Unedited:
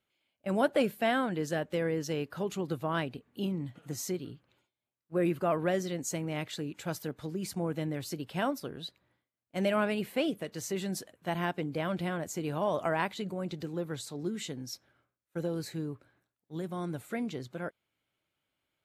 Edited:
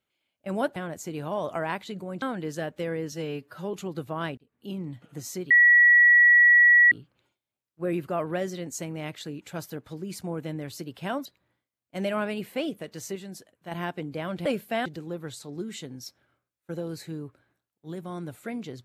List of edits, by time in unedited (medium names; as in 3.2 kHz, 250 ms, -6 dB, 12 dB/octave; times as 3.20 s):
0.76–1.16 s: swap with 12.06–13.52 s
2.06–2.47 s: stretch 1.5×
3.11–3.56 s: fade in
4.24 s: add tone 1.93 kHz -13 dBFS 1.41 s
8.58–8.86 s: delete
10.76–11.32 s: gain -6 dB